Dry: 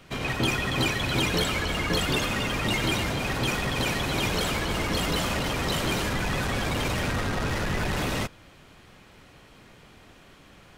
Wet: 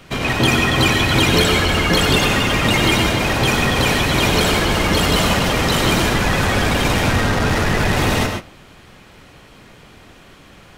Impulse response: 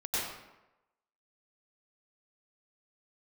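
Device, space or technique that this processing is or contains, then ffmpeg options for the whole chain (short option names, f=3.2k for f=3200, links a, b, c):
keyed gated reverb: -filter_complex "[0:a]asplit=3[a][b][c];[1:a]atrim=start_sample=2205[d];[b][d]afir=irnorm=-1:irlink=0[e];[c]apad=whole_len=474993[f];[e][f]sidechaingate=range=-16dB:threshold=-44dB:ratio=16:detection=peak,volume=-8.5dB[g];[a][g]amix=inputs=2:normalize=0,volume=7.5dB"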